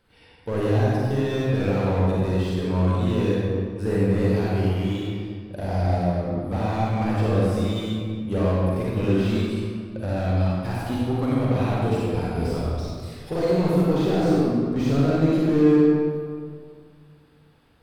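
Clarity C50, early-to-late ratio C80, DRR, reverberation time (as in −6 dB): −4.5 dB, −1.5 dB, −6.5 dB, 2.1 s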